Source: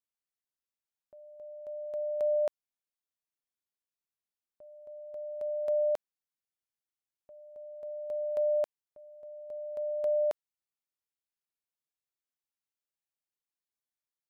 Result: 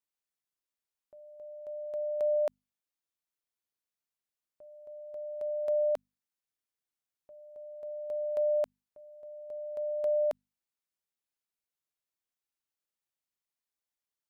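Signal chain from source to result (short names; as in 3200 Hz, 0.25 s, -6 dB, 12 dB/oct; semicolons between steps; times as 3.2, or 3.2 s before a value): notches 50/100/150/200/250 Hz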